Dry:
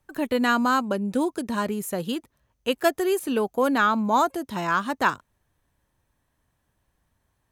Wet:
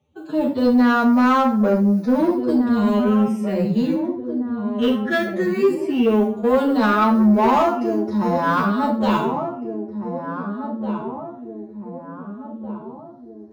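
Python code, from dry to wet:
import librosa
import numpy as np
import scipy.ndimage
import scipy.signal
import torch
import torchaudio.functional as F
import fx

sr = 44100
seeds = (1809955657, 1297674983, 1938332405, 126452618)

p1 = fx.air_absorb(x, sr, metres=120.0)
p2 = fx.mod_noise(p1, sr, seeds[0], snr_db=32)
p3 = fx.phaser_stages(p2, sr, stages=12, low_hz=790.0, high_hz=3100.0, hz=0.29, feedback_pct=20)
p4 = np.clip(p3, -10.0 ** (-28.0 / 20.0), 10.0 ** (-28.0 / 20.0))
p5 = p3 + F.gain(torch.from_numpy(p4), -6.5).numpy()
p6 = scipy.signal.sosfilt(scipy.signal.butter(4, 81.0, 'highpass', fs=sr, output='sos'), p5)
p7 = fx.peak_eq(p6, sr, hz=8300.0, db=-4.0, octaves=1.3)
p8 = fx.echo_filtered(p7, sr, ms=1003, feedback_pct=53, hz=840.0, wet_db=-8)
p9 = fx.room_shoebox(p8, sr, seeds[1], volume_m3=140.0, walls='furnished', distance_m=1.4)
p10 = 10.0 ** (-13.0 / 20.0) * np.tanh(p9 / 10.0 ** (-13.0 / 20.0))
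p11 = fx.stretch_vocoder(p10, sr, factor=1.8)
y = F.gain(torch.from_numpy(p11), 4.0).numpy()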